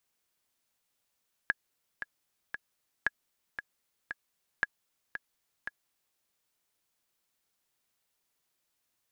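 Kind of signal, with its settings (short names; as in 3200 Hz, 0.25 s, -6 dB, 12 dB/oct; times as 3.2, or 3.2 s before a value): metronome 115 bpm, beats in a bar 3, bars 3, 1670 Hz, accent 10 dB -13 dBFS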